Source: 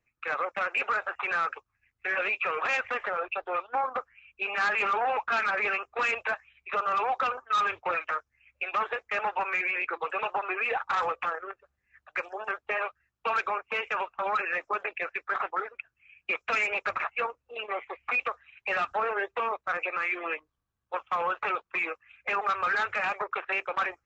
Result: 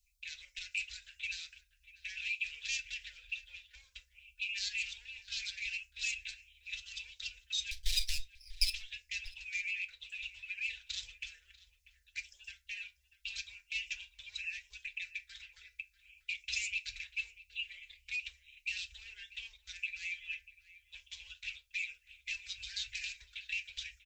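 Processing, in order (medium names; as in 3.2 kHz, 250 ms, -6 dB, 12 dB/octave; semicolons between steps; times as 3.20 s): 7.71–8.70 s: comb filter that takes the minimum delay 0.52 ms; compression, threshold -28 dBFS, peak gain reduction 5.5 dB; inverse Chebyshev band-stop 180–1300 Hz, stop band 60 dB; echo from a far wall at 110 m, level -15 dB; FDN reverb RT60 0.31 s, low-frequency decay 0.85×, high-frequency decay 0.6×, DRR 6 dB; trim +12 dB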